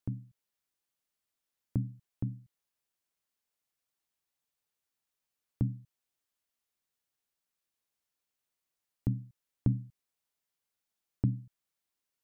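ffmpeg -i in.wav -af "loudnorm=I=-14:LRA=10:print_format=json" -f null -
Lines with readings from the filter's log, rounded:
"input_i" : "-36.1",
"input_tp" : "-14.2",
"input_lra" : "5.1",
"input_thresh" : "-47.0",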